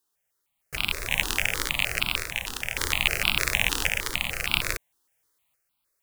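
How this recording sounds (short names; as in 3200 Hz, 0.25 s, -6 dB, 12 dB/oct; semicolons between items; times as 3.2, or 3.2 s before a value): random-step tremolo 1.8 Hz, depth 55%; notches that jump at a steady rate 6.5 Hz 600–1800 Hz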